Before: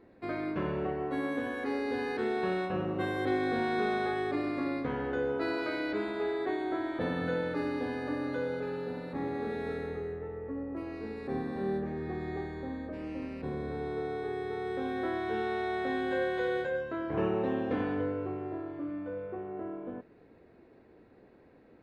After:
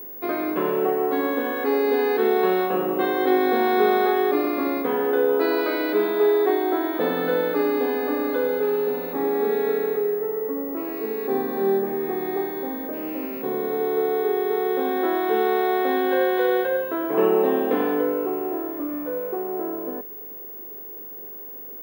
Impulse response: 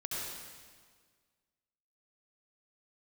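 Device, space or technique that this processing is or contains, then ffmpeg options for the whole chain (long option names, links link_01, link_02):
old television with a line whistle: -af "highpass=frequency=210:width=0.5412,highpass=frequency=210:width=1.3066,equalizer=frequency=420:width_type=q:width=4:gain=8,equalizer=frequency=760:width_type=q:width=4:gain=4,equalizer=frequency=1100:width_type=q:width=4:gain=5,equalizer=frequency=3400:width_type=q:width=4:gain=3,lowpass=frequency=6700:width=0.5412,lowpass=frequency=6700:width=1.3066,aeval=exprs='val(0)+0.00794*sin(2*PI*15625*n/s)':channel_layout=same,volume=7dB"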